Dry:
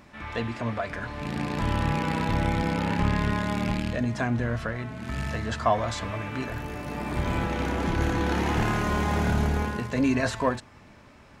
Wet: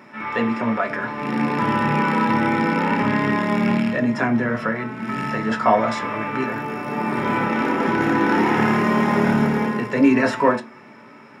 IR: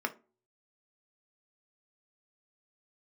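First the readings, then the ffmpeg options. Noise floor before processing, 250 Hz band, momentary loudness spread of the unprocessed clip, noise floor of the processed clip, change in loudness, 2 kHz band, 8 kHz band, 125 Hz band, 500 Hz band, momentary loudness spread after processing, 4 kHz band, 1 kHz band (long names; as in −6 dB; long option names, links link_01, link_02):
−52 dBFS, +9.0 dB, 8 LU, −44 dBFS, +7.5 dB, +8.5 dB, can't be measured, 0.0 dB, +8.0 dB, 7 LU, +2.0 dB, +9.0 dB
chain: -filter_complex "[1:a]atrim=start_sample=2205[link_01];[0:a][link_01]afir=irnorm=-1:irlink=0,volume=3dB"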